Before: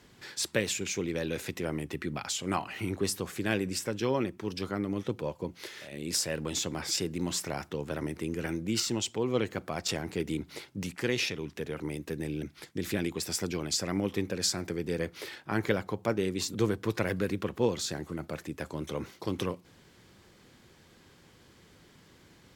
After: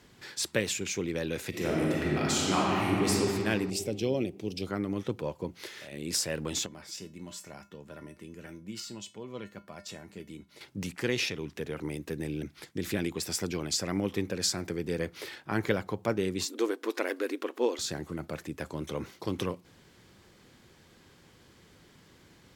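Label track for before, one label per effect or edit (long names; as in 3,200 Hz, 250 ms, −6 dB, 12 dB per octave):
1.490000	3.100000	thrown reverb, RT60 2.8 s, DRR −5.5 dB
3.700000	4.670000	flat-topped bell 1,300 Hz −15.5 dB 1.3 octaves
6.660000	10.610000	tuned comb filter 200 Hz, decay 0.25 s, harmonics odd, mix 80%
16.450000	17.790000	linear-phase brick-wall high-pass 240 Hz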